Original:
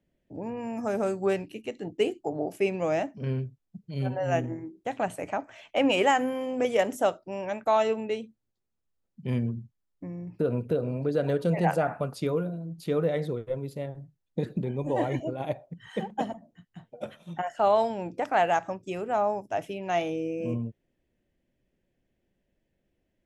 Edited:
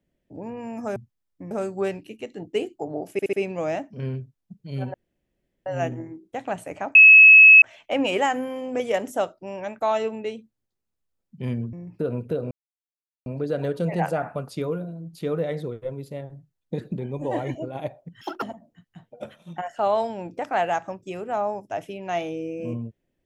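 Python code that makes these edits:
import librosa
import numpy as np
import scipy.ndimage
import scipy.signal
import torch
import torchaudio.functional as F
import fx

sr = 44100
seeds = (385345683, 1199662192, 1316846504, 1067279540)

y = fx.edit(x, sr, fx.stutter(start_s=2.57, slice_s=0.07, count=4),
    fx.insert_room_tone(at_s=4.18, length_s=0.72),
    fx.insert_tone(at_s=5.47, length_s=0.67, hz=2580.0, db=-6.0),
    fx.move(start_s=9.58, length_s=0.55, to_s=0.96),
    fx.insert_silence(at_s=10.91, length_s=0.75),
    fx.speed_span(start_s=15.86, length_s=0.37, speed=1.72), tone=tone)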